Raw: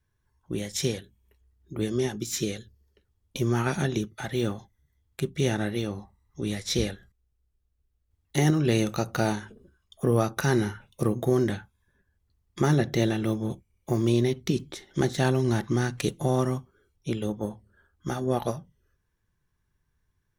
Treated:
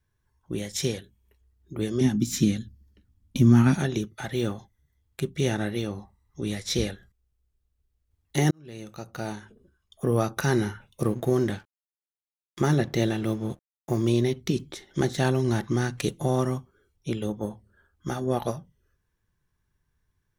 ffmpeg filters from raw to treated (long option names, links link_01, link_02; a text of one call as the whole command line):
ffmpeg -i in.wav -filter_complex "[0:a]asettb=1/sr,asplit=3[link_01][link_02][link_03];[link_01]atrim=end=2.014[link_04];[link_02]atrim=start=2.01:end=3.75,asetpts=PTS-STARTPTS,afade=type=in:duration=0.004:curve=qsin,afade=type=out:start_time=1.736:duration=0.004:curve=qsin,lowshelf=frequency=330:width_type=q:width=3:gain=7.5[link_05];[link_03]atrim=start=3.746[link_06];[link_04][link_05]acrossfade=duration=0.004:curve1=hsin:curve2=qsin[link_07];[link_07][link_06]acrossfade=duration=0.004:curve1=qsin:curve2=hsin,asettb=1/sr,asplit=3[link_08][link_09][link_10];[link_08]atrim=end=11.034[link_11];[link_09]atrim=start=11.03:end=13.97,asetpts=PTS-STARTPTS,afade=type=in:duration=0.004:curve=qsin,afade=type=out:start_time=2.936:duration=0.004:curve=qsin,aeval=exprs='sgn(val(0))*max(abs(val(0))-0.00355,0)':channel_layout=same[link_12];[link_10]atrim=start=13.966[link_13];[link_11][link_12]acrossfade=duration=0.004:curve1=hsin:curve2=qsin[link_14];[link_14][link_13]acrossfade=duration=0.004:curve1=qsin:curve2=hsin,asplit=2[link_15][link_16];[link_15]atrim=end=8.51,asetpts=PTS-STARTPTS,afade=type=out:start_time=8.506:duration=0.004:curve=hsin[link_17];[link_16]atrim=start=8.51,asetpts=PTS-STARTPTS,afade=type=in:duration=1.8[link_18];[link_17][link_18]concat=n=2:v=0:a=1" out.wav